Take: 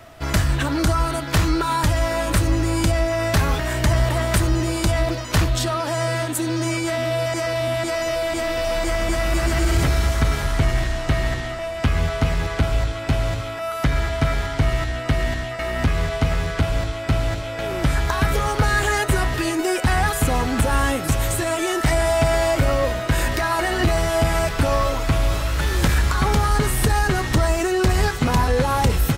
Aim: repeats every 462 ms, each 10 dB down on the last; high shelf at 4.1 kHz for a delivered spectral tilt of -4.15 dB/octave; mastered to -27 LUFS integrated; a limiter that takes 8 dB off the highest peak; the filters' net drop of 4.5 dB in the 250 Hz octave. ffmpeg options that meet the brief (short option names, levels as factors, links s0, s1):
-af "equalizer=f=250:t=o:g=-7,highshelf=f=4100:g=8,alimiter=limit=0.237:level=0:latency=1,aecho=1:1:462|924|1386|1848:0.316|0.101|0.0324|0.0104,volume=0.562"